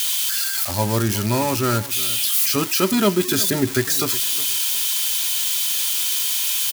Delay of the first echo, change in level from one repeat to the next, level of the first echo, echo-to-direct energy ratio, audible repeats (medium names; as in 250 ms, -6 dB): 363 ms, -14.0 dB, -17.0 dB, -17.0 dB, 2